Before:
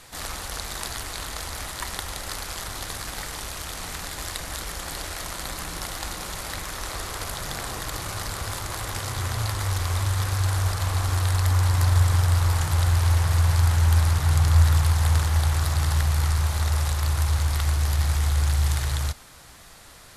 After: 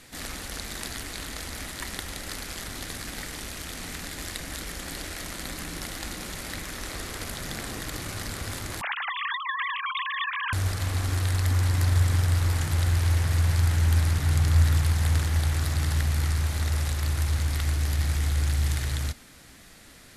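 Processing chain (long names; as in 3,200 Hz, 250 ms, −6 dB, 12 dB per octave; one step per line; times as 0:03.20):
0:08.81–0:10.53: three sine waves on the formant tracks
graphic EQ with 10 bands 250 Hz +9 dB, 1,000 Hz −6 dB, 2,000 Hz +4 dB
level −3.5 dB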